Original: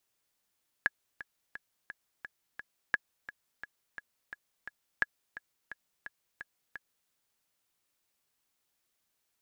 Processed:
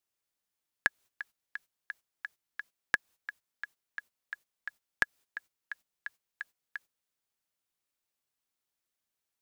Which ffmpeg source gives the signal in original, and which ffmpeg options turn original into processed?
-f lavfi -i "aevalsrc='pow(10,(-12.5-16*gte(mod(t,6*60/173),60/173))/20)*sin(2*PI*1680*mod(t,60/173))*exp(-6.91*mod(t,60/173)/0.03)':duration=6.24:sample_rate=44100"
-filter_complex "[0:a]agate=range=-14dB:threshold=-56dB:ratio=16:detection=peak,asplit=2[link_01][link_02];[link_02]acompressor=threshold=-35dB:ratio=6,volume=0.5dB[link_03];[link_01][link_03]amix=inputs=2:normalize=0"

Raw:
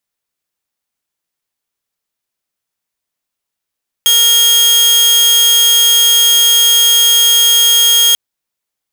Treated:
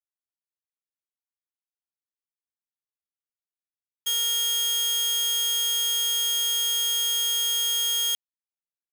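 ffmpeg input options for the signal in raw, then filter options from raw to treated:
-f lavfi -i "aevalsrc='0.631*(2*mod(3250*t,1)-1)':duration=4.09:sample_rate=44100"
-af "agate=range=-33dB:threshold=-2dB:ratio=3:detection=peak,alimiter=limit=-20dB:level=0:latency=1"

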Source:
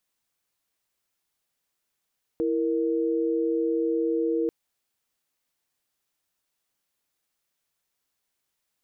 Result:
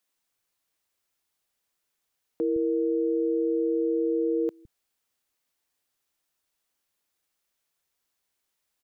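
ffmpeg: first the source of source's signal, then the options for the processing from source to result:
-f lavfi -i "aevalsrc='0.0562*(sin(2*PI*329.63*t)+sin(2*PI*466.16*t))':duration=2.09:sample_rate=44100"
-filter_complex "[0:a]acrossover=split=160[link_01][link_02];[link_01]adelay=160[link_03];[link_03][link_02]amix=inputs=2:normalize=0"

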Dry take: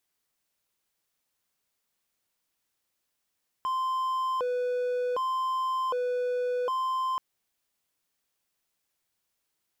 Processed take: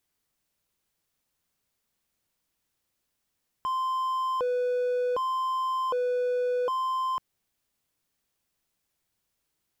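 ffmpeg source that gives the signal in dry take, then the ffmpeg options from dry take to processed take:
-f lavfi -i "aevalsrc='0.0631*(1-4*abs(mod((767.5*t+272.5/0.66*(0.5-abs(mod(0.66*t,1)-0.5)))+0.25,1)-0.5))':duration=3.53:sample_rate=44100"
-af "lowshelf=frequency=270:gain=8.5"

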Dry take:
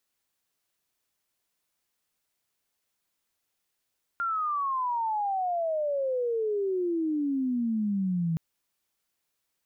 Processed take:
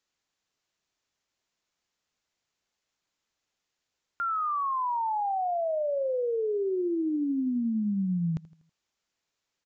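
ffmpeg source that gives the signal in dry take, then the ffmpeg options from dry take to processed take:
-f lavfi -i "aevalsrc='pow(10,(-26+1.5*t/4.17)/20)*sin(2*PI*1400*4.17/log(160/1400)*(exp(log(160/1400)*t/4.17)-1))':duration=4.17:sample_rate=44100"
-af "aecho=1:1:81|162|243|324:0.112|0.0505|0.0227|0.0102,aresample=16000,aresample=44100"

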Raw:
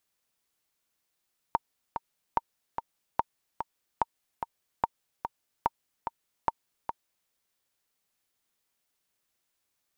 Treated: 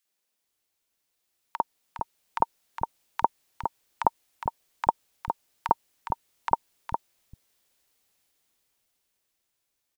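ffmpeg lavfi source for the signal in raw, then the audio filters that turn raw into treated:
-f lavfi -i "aevalsrc='pow(10,(-10.5-7.5*gte(mod(t,2*60/146),60/146))/20)*sin(2*PI*922*mod(t,60/146))*exp(-6.91*mod(t,60/146)/0.03)':duration=5.75:sample_rate=44100"
-filter_complex "[0:a]dynaudnorm=framelen=210:gausssize=17:maxgain=11.5dB,acrossover=split=160|1300[link_01][link_02][link_03];[link_02]adelay=50[link_04];[link_01]adelay=440[link_05];[link_05][link_04][link_03]amix=inputs=3:normalize=0"

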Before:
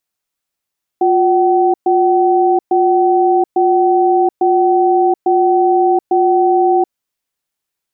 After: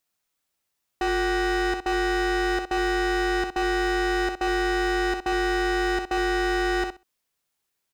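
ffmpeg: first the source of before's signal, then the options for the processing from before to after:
-f lavfi -i "aevalsrc='0.266*(sin(2*PI*356*t)+sin(2*PI*759*t))*clip(min(mod(t,0.85),0.73-mod(t,0.85))/0.005,0,1)':duration=5.89:sample_rate=44100"
-filter_complex "[0:a]asoftclip=type=hard:threshold=-23dB,asplit=2[link_01][link_02];[link_02]aecho=0:1:64|128|192:0.473|0.071|0.0106[link_03];[link_01][link_03]amix=inputs=2:normalize=0"

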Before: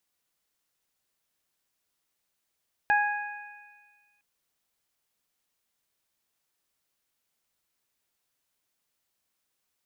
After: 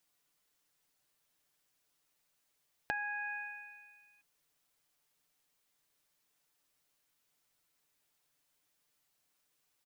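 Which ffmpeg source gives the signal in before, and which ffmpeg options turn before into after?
-f lavfi -i "aevalsrc='0.0891*pow(10,-3*t/1.31)*sin(2*PI*828*t)+0.0891*pow(10,-3*t/1.42)*sin(2*PI*1656*t)+0.0211*pow(10,-3*t/2.13)*sin(2*PI*2484*t)':duration=1.31:sample_rate=44100"
-af "aecho=1:1:6.8:0.57,acompressor=threshold=-35dB:ratio=10"

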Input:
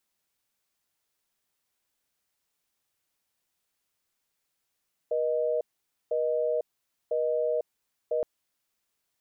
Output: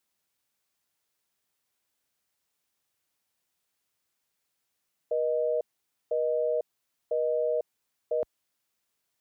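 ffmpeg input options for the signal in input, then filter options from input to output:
-f lavfi -i "aevalsrc='0.0447*(sin(2*PI*480*t)+sin(2*PI*620*t))*clip(min(mod(t,1),0.5-mod(t,1))/0.005,0,1)':duration=3.12:sample_rate=44100"
-af "highpass=49"

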